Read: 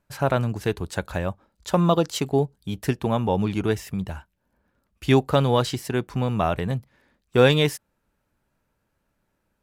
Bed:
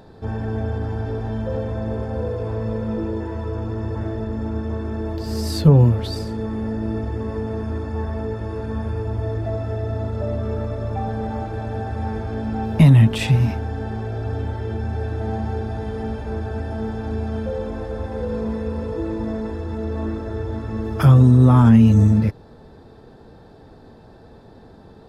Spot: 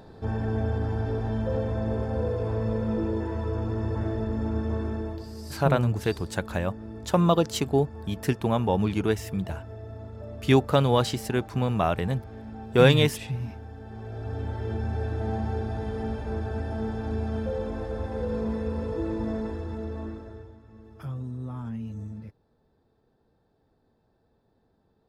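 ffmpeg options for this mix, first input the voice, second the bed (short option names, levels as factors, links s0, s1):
-filter_complex "[0:a]adelay=5400,volume=0.841[s0];[1:a]volume=2.66,afade=t=out:st=4.83:d=0.49:silence=0.237137,afade=t=in:st=13.85:d=0.86:silence=0.281838,afade=t=out:st=19.39:d=1.17:silence=0.105925[s1];[s0][s1]amix=inputs=2:normalize=0"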